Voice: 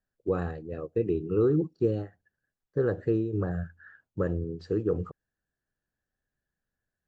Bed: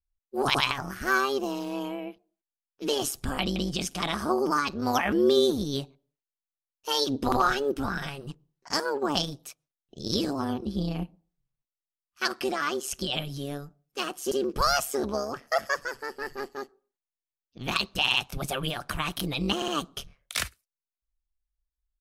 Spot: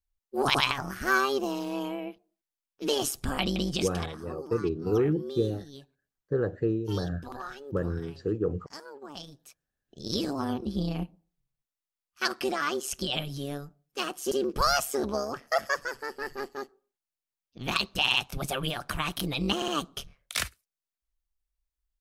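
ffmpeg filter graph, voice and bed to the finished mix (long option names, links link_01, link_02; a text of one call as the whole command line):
ffmpeg -i stem1.wav -i stem2.wav -filter_complex "[0:a]adelay=3550,volume=-1dB[link_01];[1:a]volume=16dB,afade=type=out:start_time=3.79:duration=0.33:silence=0.149624,afade=type=in:start_time=9.15:duration=1.39:silence=0.158489[link_02];[link_01][link_02]amix=inputs=2:normalize=0" out.wav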